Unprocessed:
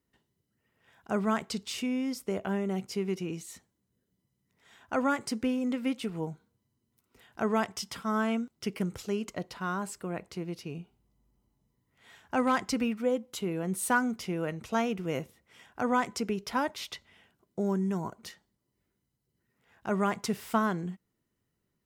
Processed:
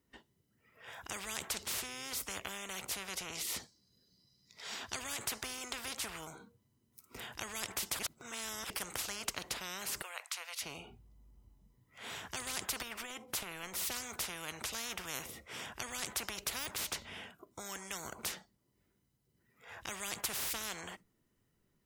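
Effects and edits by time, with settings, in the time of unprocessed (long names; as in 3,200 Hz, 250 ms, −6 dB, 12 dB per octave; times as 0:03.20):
0:03.35–0:04.99: parametric band 4,600 Hz +14 dB
0:07.99–0:08.70: reverse
0:10.02–0:10.62: Bessel high-pass filter 1,400 Hz, order 6
0:12.82–0:13.76: downward compressor, threshold −32 dBFS
0:16.59–0:18.07: de-essing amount 100%
whole clip: noise reduction from a noise print of the clip's start 12 dB; notch filter 4,200 Hz, Q 28; every bin compressed towards the loudest bin 10 to 1; level −2.5 dB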